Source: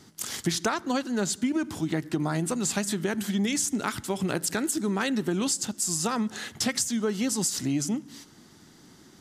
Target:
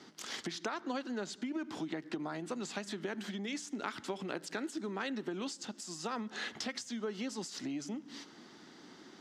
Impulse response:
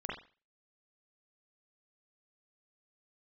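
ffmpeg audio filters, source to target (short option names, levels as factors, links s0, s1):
-filter_complex "[0:a]acompressor=threshold=0.0178:ratio=6,acrossover=split=210 5500:gain=0.0891 1 0.0794[s0][s1][s2];[s0][s1][s2]amix=inputs=3:normalize=0,volume=1.19"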